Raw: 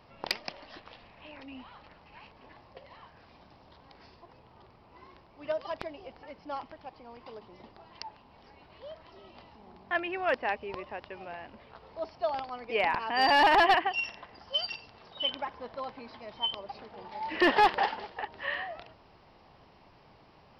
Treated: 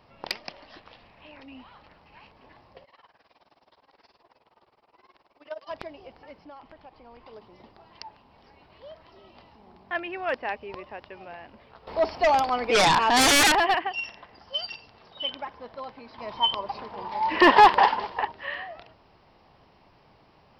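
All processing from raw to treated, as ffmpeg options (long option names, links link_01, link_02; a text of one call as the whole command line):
ffmpeg -i in.wav -filter_complex "[0:a]asettb=1/sr,asplit=3[link_01][link_02][link_03];[link_01]atrim=end=2.844[link_04];[link_02]atrim=start=2.84:end=5.69,asetpts=PTS-STARTPTS,afade=type=in:duration=0.004:curve=qsin,afade=type=out:start_time=2.846:duration=0.004:curve=qsin,bass=frequency=250:gain=-15,treble=frequency=4000:gain=1,tremolo=f=19:d=0.91[link_05];[link_03]atrim=start=5.686[link_06];[link_04][link_05]acrossfade=duration=0.004:curve1=hsin:curve2=qsin[link_07];[link_07][link_06]acrossfade=duration=0.004:curve1=qsin:curve2=hsin,asettb=1/sr,asplit=3[link_08][link_09][link_10];[link_08]atrim=end=6.434[link_11];[link_09]atrim=start=6.43:end=7.33,asetpts=PTS-STARTPTS,afade=type=in:duration=0.004:curve=qsin,afade=type=out:start_time=0.896:duration=0.004:curve=qsin,lowpass=4900,asubboost=boost=10.5:cutoff=61,acompressor=threshold=-43dB:ratio=4:attack=3.2:release=140:knee=1:detection=peak[link_12];[link_10]atrim=start=7.326[link_13];[link_11][link_12]acrossfade=duration=0.004:curve1=hsin:curve2=qsin[link_14];[link_14][link_13]acrossfade=duration=0.004:curve1=qsin:curve2=hsin,asettb=1/sr,asplit=3[link_15][link_16][link_17];[link_15]atrim=end=11.874[link_18];[link_16]atrim=start=11.87:end=13.52,asetpts=PTS-STARTPTS,afade=type=in:duration=0.004:curve=qsin,afade=type=out:start_time=1.646:duration=0.004:curve=qsin,equalizer=frequency=130:width=2:gain=-8,bandreject=frequency=6100:width=9.4,aeval=exprs='0.168*sin(PI/2*3.55*val(0)/0.168)':channel_layout=same[link_19];[link_17]atrim=start=13.516[link_20];[link_18][link_19]acrossfade=duration=0.004:curve1=hsin:curve2=qsin[link_21];[link_21][link_20]acrossfade=duration=0.004:curve1=qsin:curve2=hsin,asettb=1/sr,asplit=3[link_22][link_23][link_24];[link_22]atrim=end=16.184[link_25];[link_23]atrim=start=16.18:end=18.32,asetpts=PTS-STARTPTS,afade=type=in:duration=0.004:curve=qsin,afade=type=out:start_time=2.136:duration=0.004:curve=qsin,equalizer=frequency=1000:width=5.9:gain=12,acontrast=72[link_26];[link_24]atrim=start=18.316[link_27];[link_25][link_26]acrossfade=duration=0.004:curve1=hsin:curve2=qsin[link_28];[link_28][link_27]acrossfade=duration=0.004:curve1=qsin:curve2=hsin" out.wav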